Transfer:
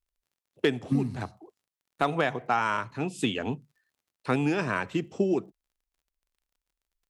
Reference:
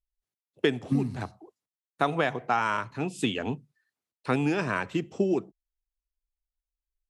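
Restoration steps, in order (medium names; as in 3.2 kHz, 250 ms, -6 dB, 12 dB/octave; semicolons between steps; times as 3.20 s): clip repair -14 dBFS; de-click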